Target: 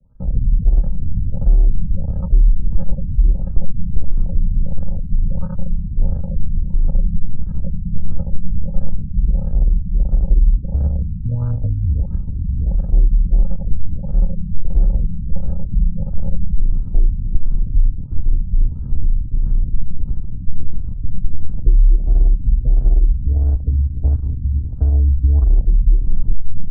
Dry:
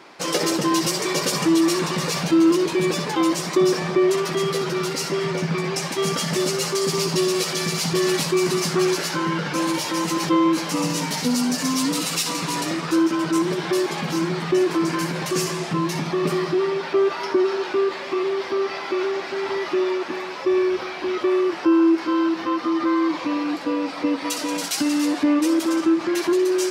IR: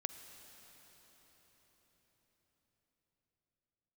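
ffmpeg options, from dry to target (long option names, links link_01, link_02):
-filter_complex "[0:a]equalizer=frequency=89:width_type=o:width=1.4:gain=11.5,aecho=1:1:109:0.2,aresample=8000,acrusher=samples=22:mix=1:aa=0.000001,aresample=44100,afwtdn=0.0631,acrossover=split=110|440[link_01][link_02][link_03];[link_01]acompressor=threshold=-20dB:ratio=4[link_04];[link_02]acompressor=threshold=-37dB:ratio=4[link_05];[link_03]acompressor=threshold=-36dB:ratio=4[link_06];[link_04][link_05][link_06]amix=inputs=3:normalize=0,aemphasis=mode=reproduction:type=bsi,afftfilt=real='re*lt(b*sr/1024,250*pow(1700/250,0.5+0.5*sin(2*PI*1.5*pts/sr)))':imag='im*lt(b*sr/1024,250*pow(1700/250,0.5+0.5*sin(2*PI*1.5*pts/sr)))':win_size=1024:overlap=0.75,volume=-3dB"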